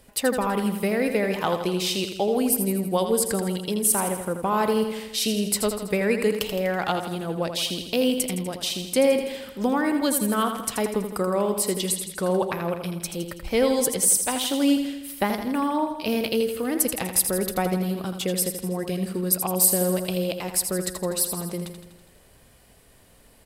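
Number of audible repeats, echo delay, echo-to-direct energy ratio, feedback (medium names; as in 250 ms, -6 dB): 6, 82 ms, -6.0 dB, 58%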